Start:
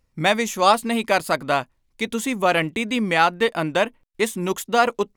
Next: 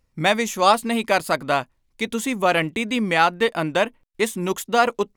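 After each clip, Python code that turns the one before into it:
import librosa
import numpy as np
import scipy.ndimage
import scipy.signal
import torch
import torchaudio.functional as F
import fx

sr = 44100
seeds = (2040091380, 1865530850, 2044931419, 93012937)

y = x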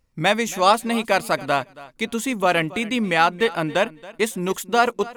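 y = fx.echo_feedback(x, sr, ms=276, feedback_pct=19, wet_db=-19.5)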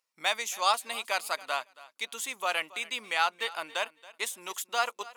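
y = scipy.signal.sosfilt(scipy.signal.butter(2, 1100.0, 'highpass', fs=sr, output='sos'), x)
y = fx.peak_eq(y, sr, hz=1800.0, db=-5.5, octaves=0.79)
y = y * librosa.db_to_amplitude(-4.0)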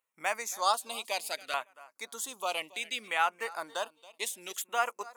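y = fx.filter_lfo_notch(x, sr, shape='saw_down', hz=0.65, low_hz=890.0, high_hz=5300.0, q=0.85)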